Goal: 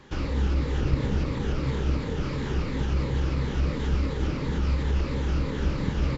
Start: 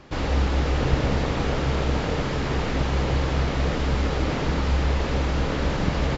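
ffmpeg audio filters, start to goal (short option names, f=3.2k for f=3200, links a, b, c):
-filter_complex "[0:a]afftfilt=real='re*pow(10,6/40*sin(2*PI*(1*log(max(b,1)*sr/1024/100)/log(2)-(-2.9)*(pts-256)/sr)))':imag='im*pow(10,6/40*sin(2*PI*(1*log(max(b,1)*sr/1024/100)/log(2)-(-2.9)*(pts-256)/sr)))':win_size=1024:overlap=0.75,equalizer=f=690:t=o:w=0.28:g=-11,acrossover=split=410[a][b];[b]alimiter=level_in=4dB:limit=-24dB:level=0:latency=1:release=181,volume=-4dB[c];[a][c]amix=inputs=2:normalize=0,volume=-2.5dB"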